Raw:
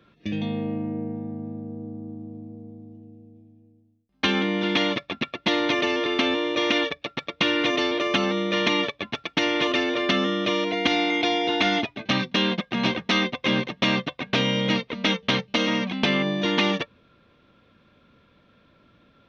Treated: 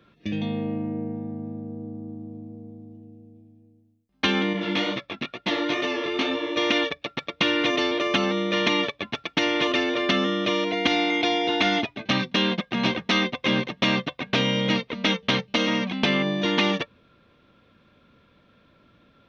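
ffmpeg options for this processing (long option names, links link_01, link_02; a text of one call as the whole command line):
ffmpeg -i in.wav -filter_complex "[0:a]asettb=1/sr,asplit=3[link_01][link_02][link_03];[link_01]atrim=end=4.534[link_04];[link_02]atrim=start=4.53:end=6.57,asetpts=PTS-STARTPTS,afade=type=in:duration=0.004:curve=qsin,afade=type=out:start_time=2.036:duration=0.004:curve=qsin,flanger=delay=15:depth=5.8:speed=2.2[link_05];[link_03]atrim=start=6.566[link_06];[link_04][link_05]acrossfade=duration=0.004:curve1=hsin:curve2=qsin[link_07];[link_07][link_06]acrossfade=duration=0.004:curve1=qsin:curve2=hsin" out.wav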